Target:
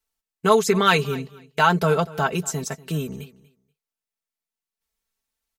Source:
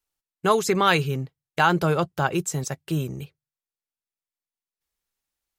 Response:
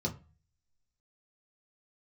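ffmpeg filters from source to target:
-af "aecho=1:1:4.5:0.72,aecho=1:1:240|480:0.1|0.017"

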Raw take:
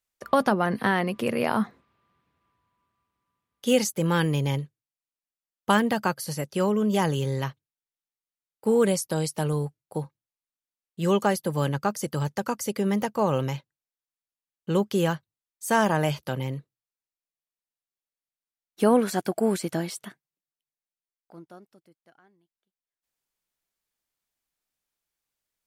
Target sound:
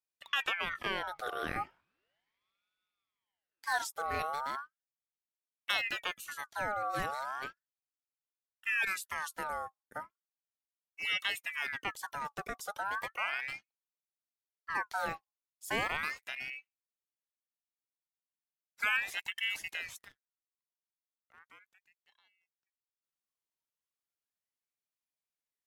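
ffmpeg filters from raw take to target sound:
-filter_complex "[0:a]asettb=1/sr,asplit=3[a][b][c];[a]atrim=end=19.984[d];[b]atrim=start=19.98:end=21.47,asetpts=PTS-STARTPTS,afade=t=in:d=0.004:c=qsin,afade=t=out:st=1.486:d=0.004:c=qsin,aeval=exprs='max(val(0),0)':c=same[e];[c]atrim=start=21.466[f];[d][e]acrossfade=d=0.004:c1=hsin:c2=qsin[g];[g][f]acrossfade=d=0.004:c1=qsin:c2=hsin,aeval=exprs='val(0)*sin(2*PI*1700*n/s+1700*0.45/0.36*sin(2*PI*0.36*n/s))':c=same,volume=-9dB"

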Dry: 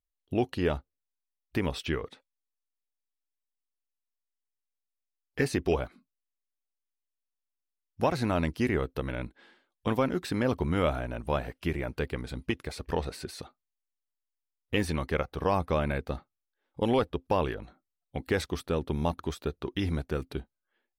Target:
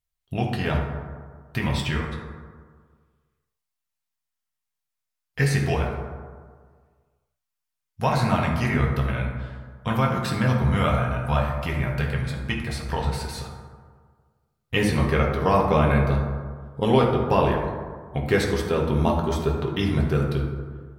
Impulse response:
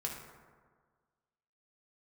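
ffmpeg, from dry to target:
-filter_complex "[0:a]asetnsamples=n=441:p=0,asendcmd='14.76 equalizer g -2',equalizer=f=370:w=1.4:g=-12.5[a];[1:a]atrim=start_sample=2205,asetrate=41454,aresample=44100[b];[a][b]afir=irnorm=-1:irlink=0,volume=7dB"

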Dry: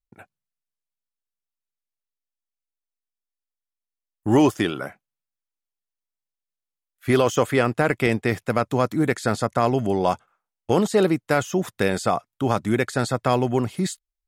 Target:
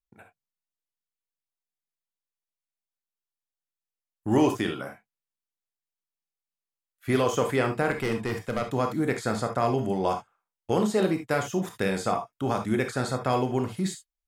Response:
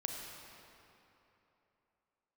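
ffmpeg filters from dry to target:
-filter_complex "[0:a]asettb=1/sr,asplit=3[a][b][c];[a]atrim=end=7.914[d];[b]atrim=start=7.91:end=8.62,asetpts=PTS-STARTPTS,afade=t=in:d=0.004:c=qsin,afade=t=out:st=0.706:d=0.004:c=qsin,asoftclip=type=hard:threshold=-16.5dB[e];[c]atrim=start=8.616[f];[d][e]acrossfade=d=0.004:c1=hsin:c2=qsin[g];[g][f]acrossfade=d=0.004:c1=qsin:c2=hsin[h];[1:a]atrim=start_sample=2205,afade=t=out:st=0.18:d=0.01,atrim=end_sample=8379,asetrate=70560,aresample=44100[i];[h][i]afir=irnorm=-1:irlink=0"

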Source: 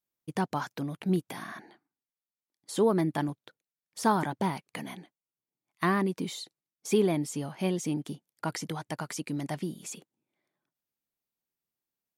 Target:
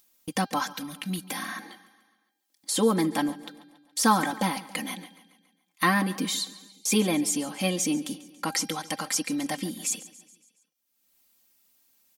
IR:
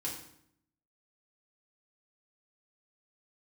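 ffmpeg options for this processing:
-filter_complex "[0:a]asettb=1/sr,asplit=3[a][b][c];[a]atrim=end=0.694[d];[b]atrim=start=0.69:end=1.25,asetpts=PTS-STARTPTS,afade=t=in:d=0.004:c=qsin,afade=t=out:st=0.556:d=0.004:c=qsin,equalizer=f=470:t=o:w=2.2:g=-13.5[e];[c]atrim=start=1.246[f];[d][e]acrossfade=d=0.004:c1=hsin:c2=qsin[g];[g][f]acrossfade=d=0.004:c1=qsin:c2=hsin,agate=range=-33dB:threshold=-51dB:ratio=3:detection=peak,highshelf=f=2.2k:g=10.5,aecho=1:1:3.8:0.93,bandreject=f=400:t=h:w=4,bandreject=f=800:t=h:w=4,bandreject=f=1.2k:t=h:w=4,bandreject=f=1.6k:t=h:w=4,bandreject=f=2k:t=h:w=4,bandreject=f=2.4k:t=h:w=4,bandreject=f=2.8k:t=h:w=4,bandreject=f=3.2k:t=h:w=4,bandreject=f=3.6k:t=h:w=4,bandreject=f=4k:t=h:w=4,bandreject=f=4.4k:t=h:w=4,bandreject=f=4.8k:t=h:w=4,bandreject=f=5.2k:t=h:w=4,bandreject=f=5.6k:t=h:w=4,bandreject=f=6k:t=h:w=4,acompressor=mode=upward:threshold=-31dB:ratio=2.5,aecho=1:1:140|280|420|560|700:0.126|0.0692|0.0381|0.0209|0.0115"

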